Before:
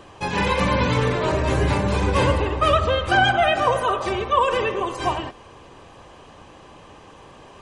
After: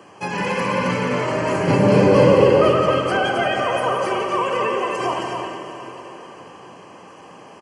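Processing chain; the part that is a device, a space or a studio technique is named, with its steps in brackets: PA system with an anti-feedback notch (HPF 130 Hz 24 dB/oct; Butterworth band-stop 3700 Hz, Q 3.5; limiter -15 dBFS, peak gain reduction 8.5 dB); 1.67–2.69 graphic EQ 125/250/500/4000/8000 Hz +11/+5/+11/+6/-4 dB; loudspeakers at several distances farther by 60 m -9 dB, 92 m -5 dB; plate-style reverb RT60 4.7 s, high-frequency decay 0.9×, DRR 5 dB

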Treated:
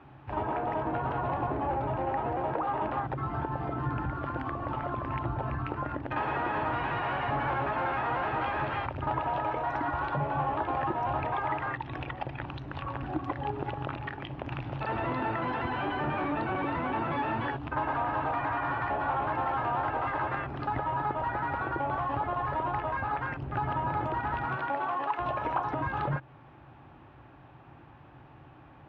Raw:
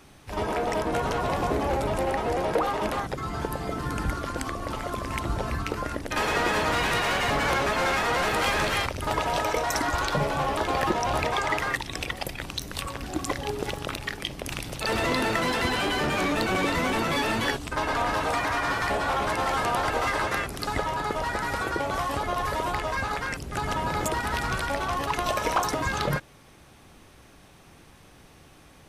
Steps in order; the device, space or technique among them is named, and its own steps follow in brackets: 24.44–25.18 HPF 140 Hz -> 450 Hz 12 dB/oct; bass amplifier (compressor 3:1, threshold -30 dBFS, peak gain reduction 8 dB; speaker cabinet 64–2400 Hz, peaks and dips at 130 Hz +9 dB, 190 Hz -8 dB, 310 Hz +3 dB, 460 Hz -6 dB, 860 Hz +6 dB, 2100 Hz -7 dB)

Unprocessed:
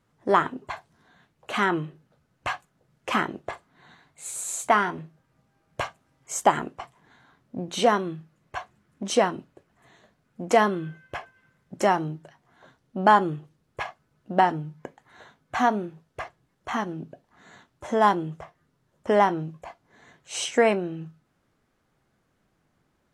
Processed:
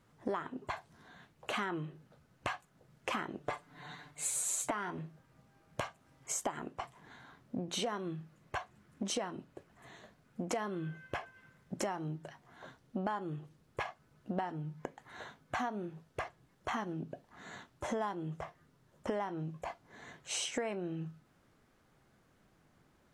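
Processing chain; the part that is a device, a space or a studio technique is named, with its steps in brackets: serial compression, leveller first (compressor 2:1, threshold -23 dBFS, peak gain reduction 6.5 dB; compressor 4:1, threshold -38 dBFS, peak gain reduction 17 dB); 3.4–4.71 comb 6.8 ms, depth 89%; gain +2 dB

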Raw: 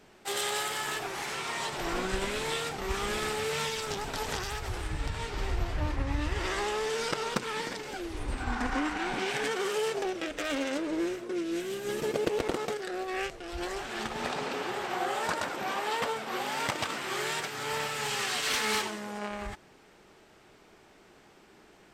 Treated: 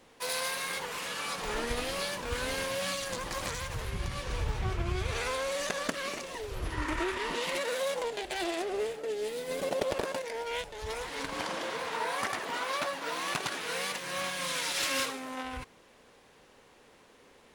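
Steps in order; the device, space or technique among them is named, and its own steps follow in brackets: nightcore (varispeed +25%); gain -1.5 dB

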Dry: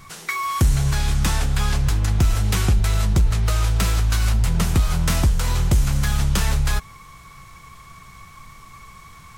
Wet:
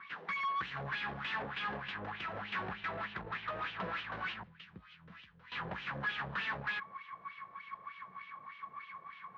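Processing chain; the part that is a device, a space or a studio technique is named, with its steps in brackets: 4.43–5.52 passive tone stack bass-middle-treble 6-0-2; wah-wah guitar rig (wah 3.3 Hz 520–3000 Hz, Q 3.3; tube stage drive 40 dB, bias 0.5; speaker cabinet 91–3600 Hz, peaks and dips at 190 Hz +10 dB, 620 Hz -3 dB, 1100 Hz +4 dB, 1700 Hz +7 dB); gain +3.5 dB

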